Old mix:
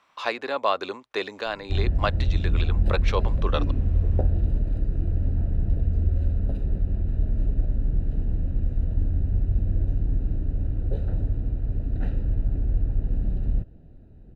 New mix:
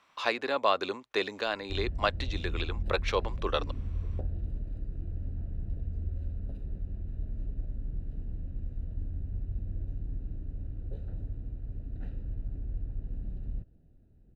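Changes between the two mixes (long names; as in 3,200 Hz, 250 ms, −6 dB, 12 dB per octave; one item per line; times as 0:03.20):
background −12.0 dB
master: add parametric band 840 Hz −3 dB 2 octaves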